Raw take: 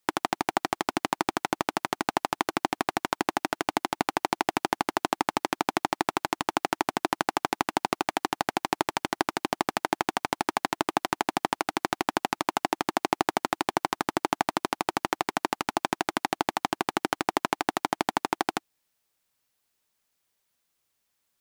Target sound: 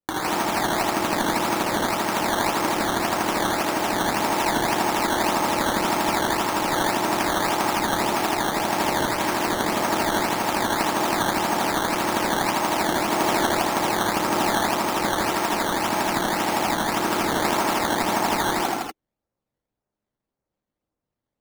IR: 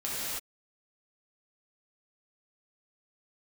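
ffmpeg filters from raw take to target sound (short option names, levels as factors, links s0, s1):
-filter_complex "[1:a]atrim=start_sample=2205[s0];[0:a][s0]afir=irnorm=-1:irlink=0,adynamicsmooth=sensitivity=5.5:basefreq=720,acrusher=samples=12:mix=1:aa=0.000001:lfo=1:lforange=12:lforate=1.8"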